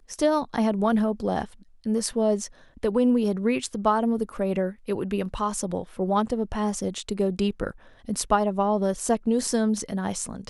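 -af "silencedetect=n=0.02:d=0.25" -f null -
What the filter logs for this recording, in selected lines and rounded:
silence_start: 1.45
silence_end: 1.86 | silence_duration: 0.41
silence_start: 2.46
silence_end: 2.83 | silence_duration: 0.37
silence_start: 7.71
silence_end: 8.09 | silence_duration: 0.38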